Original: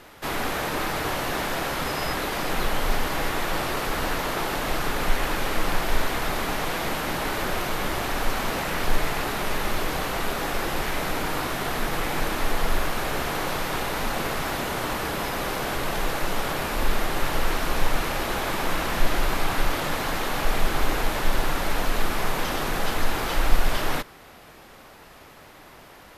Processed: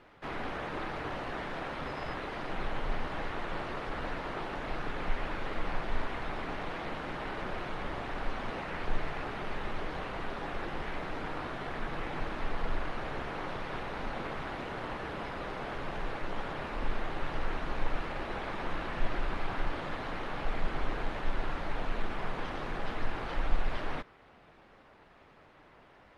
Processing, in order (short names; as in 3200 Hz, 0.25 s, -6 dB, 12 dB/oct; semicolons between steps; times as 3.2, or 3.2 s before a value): LPF 3200 Hz 12 dB/oct; gain -8.5 dB; Opus 32 kbps 48000 Hz